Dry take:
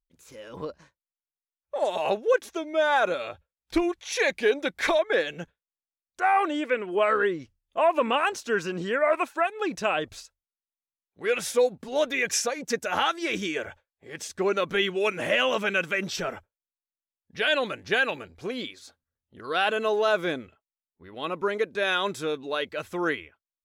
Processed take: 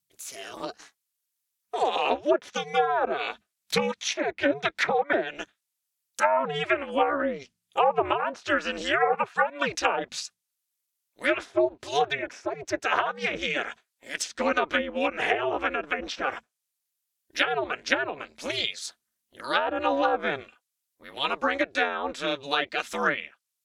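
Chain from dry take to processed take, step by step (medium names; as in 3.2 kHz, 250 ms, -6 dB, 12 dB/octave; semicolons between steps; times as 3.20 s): ring modulator 140 Hz; tilt EQ +4 dB/octave; low-pass that closes with the level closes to 750 Hz, closed at -22 dBFS; trim +6.5 dB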